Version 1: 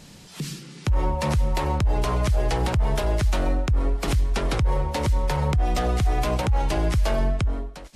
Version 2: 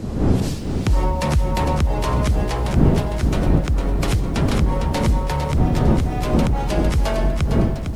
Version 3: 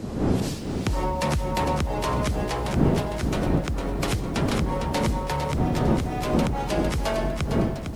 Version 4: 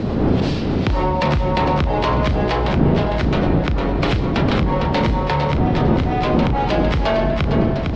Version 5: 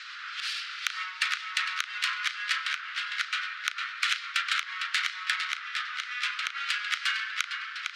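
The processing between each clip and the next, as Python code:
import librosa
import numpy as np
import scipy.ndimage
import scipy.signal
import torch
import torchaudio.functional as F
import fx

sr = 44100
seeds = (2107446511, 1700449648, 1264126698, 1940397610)

y1 = fx.dmg_wind(x, sr, seeds[0], corner_hz=210.0, level_db=-21.0)
y1 = fx.rider(y1, sr, range_db=4, speed_s=0.5)
y1 = fx.echo_crushed(y1, sr, ms=455, feedback_pct=35, bits=8, wet_db=-7)
y2 = fx.low_shelf(y1, sr, hz=110.0, db=-10.0)
y2 = F.gain(torch.from_numpy(y2), -2.0).numpy()
y3 = scipy.signal.sosfilt(scipy.signal.butter(4, 4300.0, 'lowpass', fs=sr, output='sos'), y2)
y3 = fx.doubler(y3, sr, ms=35.0, db=-11.0)
y3 = fx.env_flatten(y3, sr, amount_pct=50)
y3 = F.gain(torch.from_numpy(y3), 3.0).numpy()
y4 = fx.tracing_dist(y3, sr, depth_ms=0.062)
y4 = scipy.signal.sosfilt(scipy.signal.butter(12, 1300.0, 'highpass', fs=sr, output='sos'), y4)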